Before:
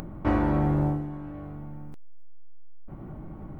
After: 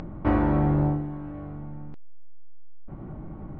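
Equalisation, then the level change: air absorption 180 m; +2.0 dB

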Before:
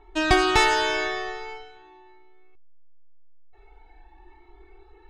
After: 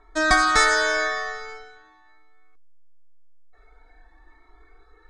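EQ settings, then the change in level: steep low-pass 10000 Hz 36 dB/oct; low shelf 410 Hz -8.5 dB; fixed phaser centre 560 Hz, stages 8; +8.0 dB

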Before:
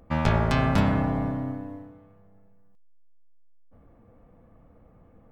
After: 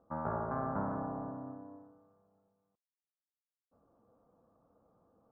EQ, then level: HPF 450 Hz 6 dB/oct; steep low-pass 1400 Hz 48 dB/oct; -7.5 dB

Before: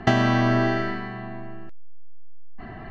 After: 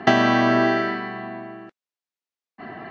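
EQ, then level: BPF 230–6000 Hz; +4.5 dB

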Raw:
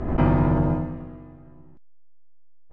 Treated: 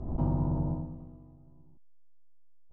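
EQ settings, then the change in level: bell 1200 Hz -11 dB 2.1 oct; dynamic EQ 2500 Hz, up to -6 dB, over -55 dBFS, Q 1.4; EQ curve 140 Hz 0 dB, 440 Hz -4 dB, 950 Hz +5 dB, 1900 Hz -18 dB, 3800 Hz -9 dB; -7.5 dB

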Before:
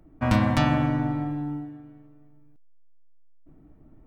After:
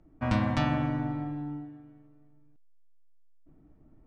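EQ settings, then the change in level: LPF 6400 Hz 12 dB/oct; -5.5 dB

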